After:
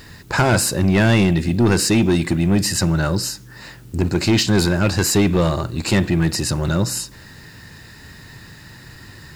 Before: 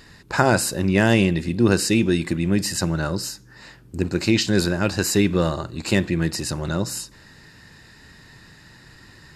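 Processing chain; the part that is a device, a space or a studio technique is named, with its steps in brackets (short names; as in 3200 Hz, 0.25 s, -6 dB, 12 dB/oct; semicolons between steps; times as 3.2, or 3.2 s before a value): open-reel tape (soft clip -16 dBFS, distortion -10 dB; bell 98 Hz +4.5 dB 1.07 oct; white noise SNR 37 dB); gain +5.5 dB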